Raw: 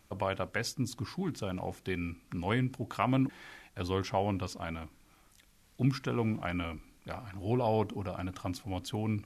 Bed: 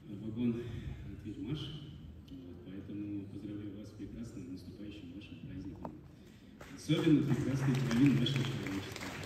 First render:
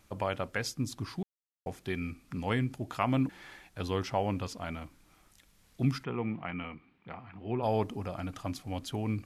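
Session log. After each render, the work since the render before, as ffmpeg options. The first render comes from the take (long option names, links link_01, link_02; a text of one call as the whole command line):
ffmpeg -i in.wav -filter_complex "[0:a]asplit=3[link_01][link_02][link_03];[link_01]afade=type=out:start_time=6.03:duration=0.02[link_04];[link_02]highpass=140,equalizer=frequency=290:width_type=q:width=4:gain=-6,equalizer=frequency=590:width_type=q:width=4:gain=-9,equalizer=frequency=1500:width_type=q:width=4:gain=-5,lowpass=frequency=2800:width=0.5412,lowpass=frequency=2800:width=1.3066,afade=type=in:start_time=6.03:duration=0.02,afade=type=out:start_time=7.62:duration=0.02[link_05];[link_03]afade=type=in:start_time=7.62:duration=0.02[link_06];[link_04][link_05][link_06]amix=inputs=3:normalize=0,asplit=3[link_07][link_08][link_09];[link_07]atrim=end=1.23,asetpts=PTS-STARTPTS,afade=type=out:start_time=1.226:duration=0.004:curve=hsin[link_10];[link_08]atrim=start=1.23:end=1.66,asetpts=PTS-STARTPTS,volume=0[link_11];[link_09]atrim=start=1.66,asetpts=PTS-STARTPTS,afade=type=in:duration=0.004:curve=hsin[link_12];[link_10][link_11][link_12]concat=n=3:v=0:a=1" out.wav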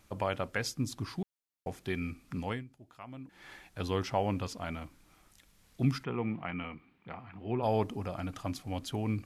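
ffmpeg -i in.wav -filter_complex "[0:a]asplit=3[link_01][link_02][link_03];[link_01]atrim=end=2.64,asetpts=PTS-STARTPTS,afade=type=out:start_time=2.39:duration=0.25:silence=0.125893[link_04];[link_02]atrim=start=2.64:end=3.27,asetpts=PTS-STARTPTS,volume=-18dB[link_05];[link_03]atrim=start=3.27,asetpts=PTS-STARTPTS,afade=type=in:duration=0.25:silence=0.125893[link_06];[link_04][link_05][link_06]concat=n=3:v=0:a=1" out.wav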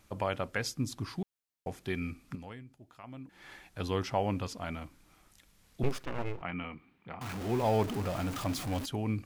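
ffmpeg -i in.wav -filter_complex "[0:a]asettb=1/sr,asplit=3[link_01][link_02][link_03];[link_01]atrim=end=2.354[link_04];[link_02]atrim=start=2.35:end=3.04,asetpts=PTS-STARTPTS,afade=type=in:duration=0.004:curve=qsin,afade=type=out:start_time=0.686:duration=0.004:curve=qsin,acompressor=threshold=-44dB:ratio=3:attack=3.2:release=140:knee=1:detection=peak[link_05];[link_03]atrim=start=3.036[link_06];[link_04][link_05]acrossfade=duration=0.004:curve1=hsin:curve2=qsin[link_07];[link_07][link_06]acrossfade=duration=0.004:curve1=qsin:curve2=hsin,asettb=1/sr,asplit=3[link_08][link_09][link_10];[link_08]atrim=end=5.834[link_11];[link_09]atrim=start=5.83:end=6.42,asetpts=PTS-STARTPTS,afade=type=in:duration=0.004:curve=qsin,afade=type=out:start_time=0.586:duration=0.004:curve=qsin,aeval=exprs='abs(val(0))':channel_layout=same[link_12];[link_10]atrim=start=6.416[link_13];[link_11][link_12]acrossfade=duration=0.004:curve1=hsin:curve2=qsin[link_14];[link_14][link_13]acrossfade=duration=0.004:curve1=qsin:curve2=hsin,asettb=1/sr,asplit=3[link_15][link_16][link_17];[link_15]atrim=end=7.214[link_18];[link_16]atrim=start=7.21:end=8.86,asetpts=PTS-STARTPTS,afade=type=in:duration=0.004:curve=qsin,afade=type=out:start_time=1.646:duration=0.004:curve=qsin,aeval=exprs='val(0)+0.5*0.0178*sgn(val(0))':channel_layout=same[link_19];[link_17]atrim=start=8.856[link_20];[link_18][link_19]acrossfade=duration=0.004:curve1=hsin:curve2=qsin[link_21];[link_21][link_20]acrossfade=duration=0.004:curve1=qsin:curve2=hsin" out.wav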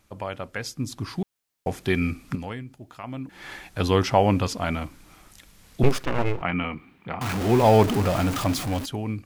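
ffmpeg -i in.wav -af "dynaudnorm=framelen=340:gausssize=7:maxgain=12dB" out.wav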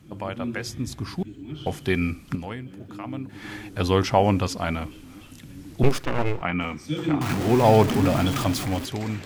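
ffmpeg -i in.wav -i bed.wav -filter_complex "[1:a]volume=3dB[link_01];[0:a][link_01]amix=inputs=2:normalize=0" out.wav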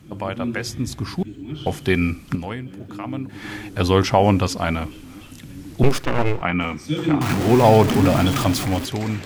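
ffmpeg -i in.wav -af "volume=4.5dB,alimiter=limit=-3dB:level=0:latency=1" out.wav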